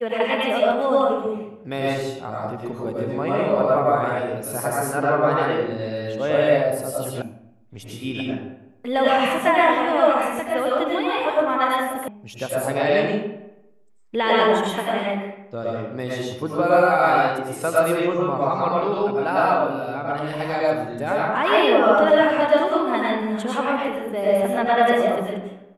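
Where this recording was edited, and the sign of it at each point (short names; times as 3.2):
7.22 sound cut off
12.08 sound cut off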